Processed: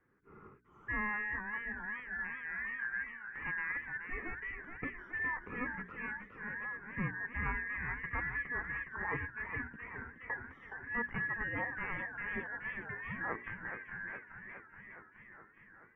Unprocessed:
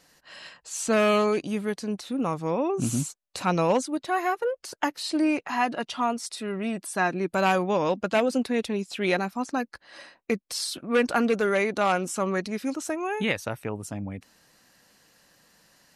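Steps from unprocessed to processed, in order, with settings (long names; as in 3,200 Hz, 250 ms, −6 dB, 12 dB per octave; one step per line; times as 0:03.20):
band-splitting scrambler in four parts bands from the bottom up 2143
inverse Chebyshev low-pass filter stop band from 3,800 Hz, stop band 50 dB
parametric band 650 Hz −12.5 dB 0.55 octaves
mains-hum notches 60/120/180/240/300/360/420 Hz
feedback echo with a swinging delay time 419 ms, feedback 69%, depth 176 cents, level −8.5 dB
level −6 dB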